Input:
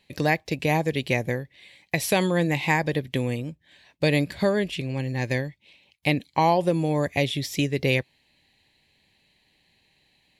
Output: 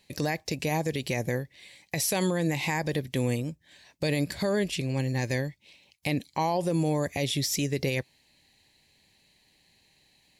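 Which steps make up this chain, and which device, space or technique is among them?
over-bright horn tweeter (resonant high shelf 4.3 kHz +6 dB, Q 1.5; peak limiter -18 dBFS, peak gain reduction 10 dB)

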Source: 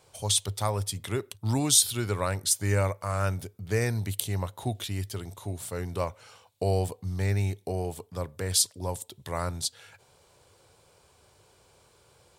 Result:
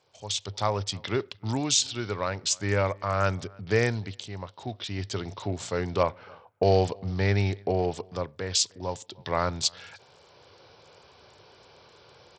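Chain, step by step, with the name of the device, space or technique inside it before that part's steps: echo from a far wall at 52 m, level -27 dB; 6.03–7.86 s: level-controlled noise filter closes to 1 kHz, open at -24 dBFS; Bluetooth headset (high-pass 170 Hz 6 dB/octave; level rider gain up to 14.5 dB; resampled via 16 kHz; trim -6.5 dB; SBC 64 kbps 44.1 kHz)

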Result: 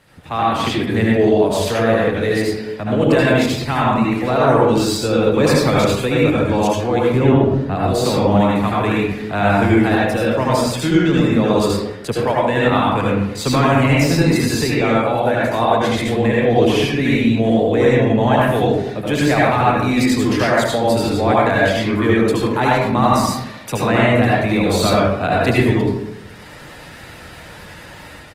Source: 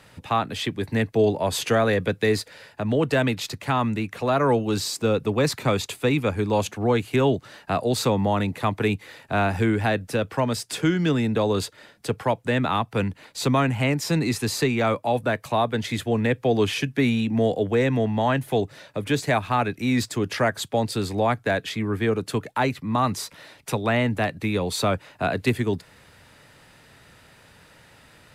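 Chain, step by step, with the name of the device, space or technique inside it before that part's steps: 7.08–7.76 s: tilt EQ -2.5 dB/octave; speakerphone in a meeting room (reverberation RT60 0.80 s, pre-delay 70 ms, DRR -5.5 dB; speakerphone echo 100 ms, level -23 dB; level rider gain up to 10.5 dB; trim -1.5 dB; Opus 20 kbps 48 kHz)

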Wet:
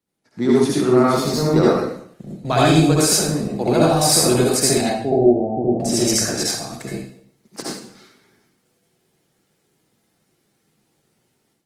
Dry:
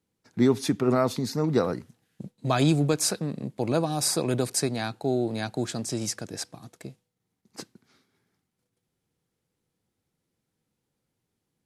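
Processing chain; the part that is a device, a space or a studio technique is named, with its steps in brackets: 4.81–5.80 s: steep low-pass 800 Hz 72 dB/octave; bass shelf 160 Hz -5.5 dB; far-field microphone of a smart speaker (reverberation RT60 0.65 s, pre-delay 61 ms, DRR -6 dB; high-pass 82 Hz 12 dB/octave; level rider gain up to 11 dB; trim -1.5 dB; Opus 24 kbps 48 kHz)

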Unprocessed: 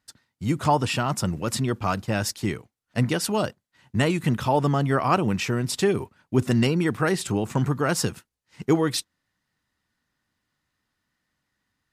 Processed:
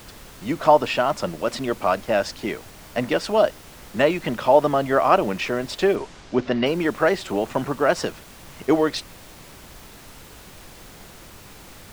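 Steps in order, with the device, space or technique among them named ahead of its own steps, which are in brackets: horn gramophone (band-pass 290–4100 Hz; peaking EQ 610 Hz +9.5 dB 0.38 oct; wow and flutter; pink noise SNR 20 dB); 5.95–6.65 s: low-pass 9.4 kHz -> 4.5 kHz 24 dB/octave; trim +3 dB

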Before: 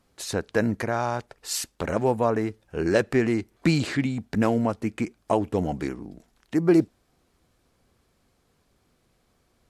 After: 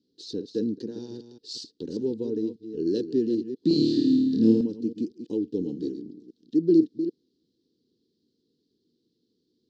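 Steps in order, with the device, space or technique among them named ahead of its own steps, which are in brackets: chunks repeated in reverse 197 ms, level -10 dB; elliptic band-stop 310–4500 Hz, stop band 40 dB; phone earpiece (cabinet simulation 360–3800 Hz, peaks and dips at 460 Hz +10 dB, 1 kHz +4 dB, 1.7 kHz +3 dB); 3.68–4.61 s: flutter echo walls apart 4.6 m, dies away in 1 s; trim +6 dB

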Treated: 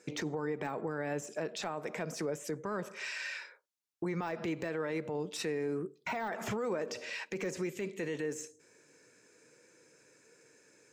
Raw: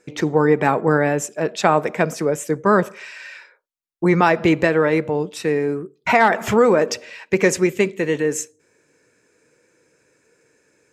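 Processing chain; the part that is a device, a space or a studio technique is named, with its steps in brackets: broadcast voice chain (high-pass 110 Hz; de-esser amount 75%; compression 5:1, threshold -26 dBFS, peak gain reduction 14.5 dB; peaking EQ 5.7 kHz +5 dB 1.3 oct; peak limiter -23.5 dBFS, peak gain reduction 11.5 dB); trim -3.5 dB

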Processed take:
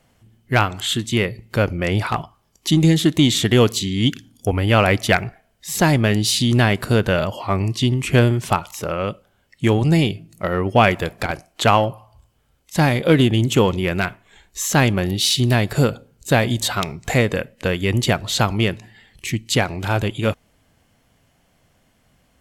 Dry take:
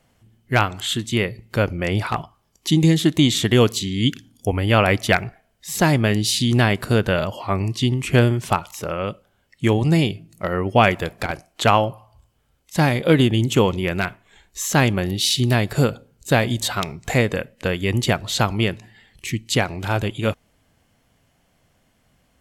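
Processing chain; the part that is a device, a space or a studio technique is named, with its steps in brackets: parallel distortion (in parallel at -11 dB: hard clipper -19 dBFS, distortion -6 dB)

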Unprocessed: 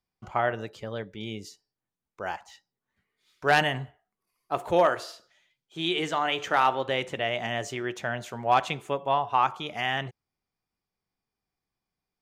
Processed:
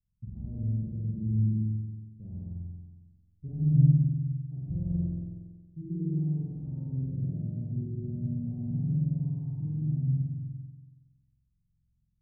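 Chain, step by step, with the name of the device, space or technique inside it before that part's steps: club heard from the street (peak limiter -20.5 dBFS, peak gain reduction 9.5 dB; low-pass 160 Hz 24 dB/octave; reverberation RT60 0.70 s, pre-delay 114 ms, DRR -0.5 dB); spring tank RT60 1.3 s, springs 46 ms, chirp 25 ms, DRR -5 dB; trim +7 dB

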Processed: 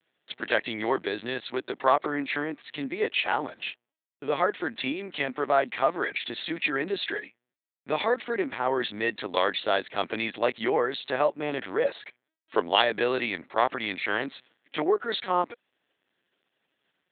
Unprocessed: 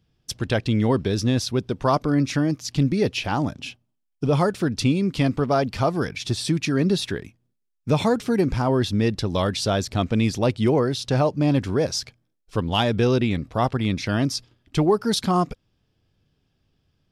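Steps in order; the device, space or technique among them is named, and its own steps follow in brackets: talking toy (LPC vocoder at 8 kHz pitch kept; high-pass 490 Hz 12 dB/octave; peaking EQ 1.9 kHz +8 dB 0.52 oct); 11.85–12.76 s: dynamic bell 530 Hz, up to +7 dB, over -42 dBFS, Q 0.92

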